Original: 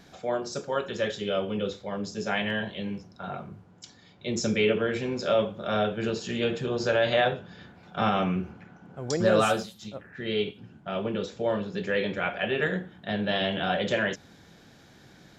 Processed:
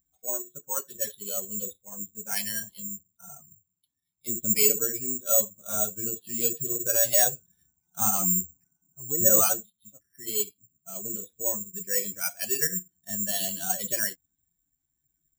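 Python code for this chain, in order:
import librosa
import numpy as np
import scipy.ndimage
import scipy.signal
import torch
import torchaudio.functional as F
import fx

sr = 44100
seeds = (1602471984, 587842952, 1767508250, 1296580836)

y = fx.bin_expand(x, sr, power=2.0)
y = (np.kron(scipy.signal.resample_poly(y, 1, 6), np.eye(6)[0]) * 6)[:len(y)]
y = F.gain(torch.from_numpy(y), -2.5).numpy()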